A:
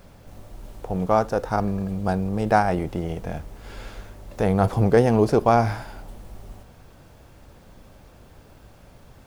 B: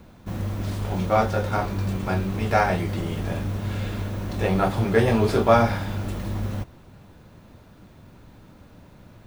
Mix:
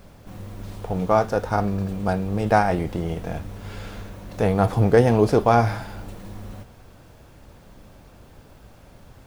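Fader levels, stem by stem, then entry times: +0.5, −9.0 decibels; 0.00, 0.00 seconds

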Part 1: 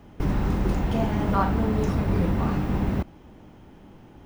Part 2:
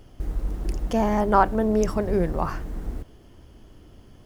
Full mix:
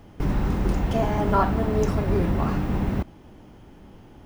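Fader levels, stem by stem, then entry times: 0.0, −5.5 decibels; 0.00, 0.00 seconds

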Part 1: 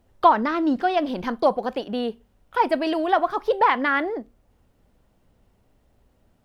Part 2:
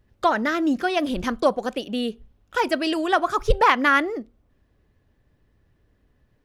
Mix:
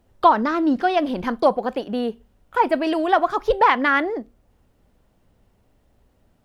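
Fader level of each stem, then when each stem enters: +1.0, −13.0 decibels; 0.00, 0.00 seconds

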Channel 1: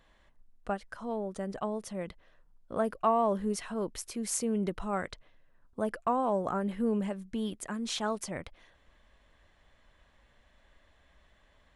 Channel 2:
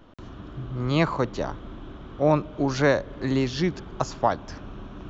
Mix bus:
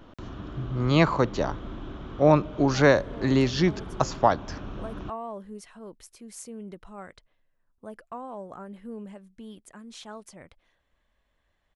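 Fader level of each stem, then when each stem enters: −9.5, +2.0 decibels; 2.05, 0.00 seconds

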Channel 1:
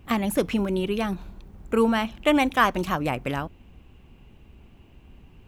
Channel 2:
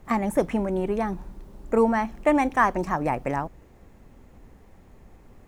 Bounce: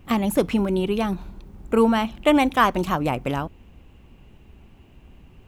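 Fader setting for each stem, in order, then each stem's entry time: +1.0, −8.0 decibels; 0.00, 0.00 seconds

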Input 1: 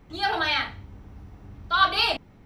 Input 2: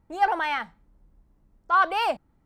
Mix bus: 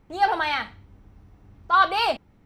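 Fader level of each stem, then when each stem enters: −7.0, +1.0 decibels; 0.00, 0.00 seconds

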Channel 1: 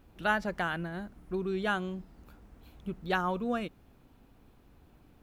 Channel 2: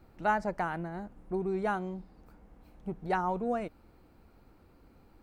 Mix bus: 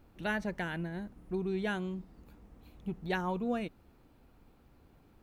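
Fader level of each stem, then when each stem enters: −4.5, −6.0 decibels; 0.00, 0.00 seconds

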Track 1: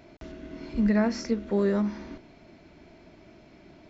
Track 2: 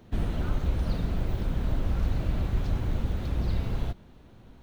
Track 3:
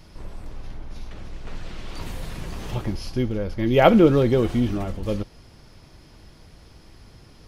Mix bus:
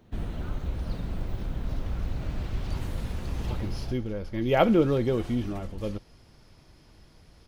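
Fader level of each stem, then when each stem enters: muted, −4.5 dB, −6.5 dB; muted, 0.00 s, 0.75 s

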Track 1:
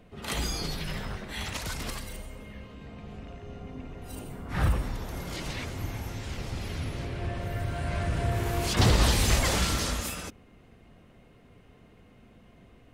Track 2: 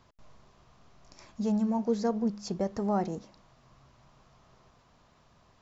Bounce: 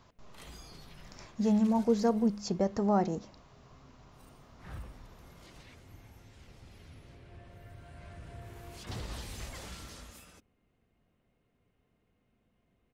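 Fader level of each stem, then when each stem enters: −19.0, +1.5 decibels; 0.10, 0.00 seconds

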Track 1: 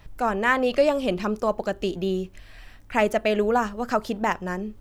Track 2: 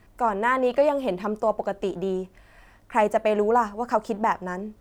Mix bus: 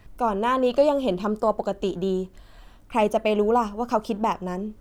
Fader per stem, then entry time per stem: −5.0, −1.5 decibels; 0.00, 0.00 seconds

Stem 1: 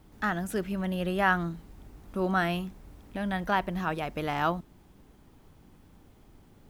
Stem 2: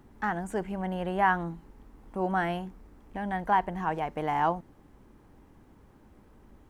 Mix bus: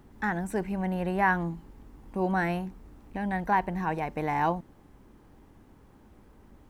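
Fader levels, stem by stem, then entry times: −9.0, +0.5 decibels; 0.00, 0.00 seconds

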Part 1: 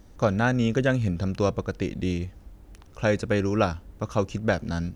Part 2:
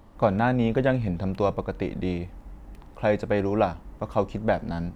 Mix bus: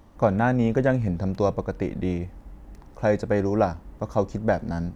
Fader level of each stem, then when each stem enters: −9.0, −1.5 decibels; 0.00, 0.00 seconds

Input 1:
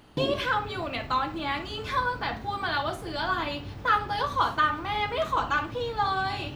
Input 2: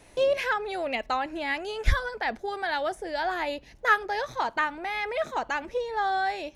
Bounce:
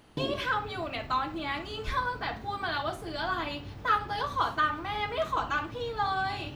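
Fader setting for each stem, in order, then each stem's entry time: −3.5, −14.0 decibels; 0.00, 0.00 seconds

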